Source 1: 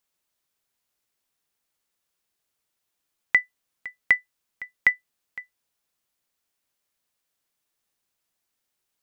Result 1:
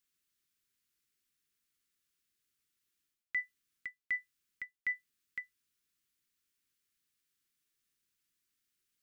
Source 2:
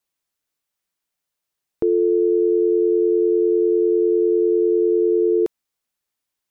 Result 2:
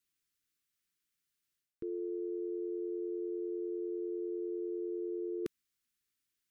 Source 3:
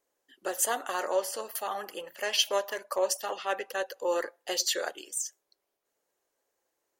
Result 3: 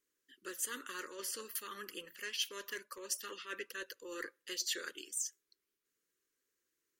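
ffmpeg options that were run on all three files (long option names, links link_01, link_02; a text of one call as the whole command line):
ffmpeg -i in.wav -af "areverse,acompressor=threshold=-30dB:ratio=8,areverse,asuperstop=centerf=720:order=4:qfactor=0.78,volume=-3dB" out.wav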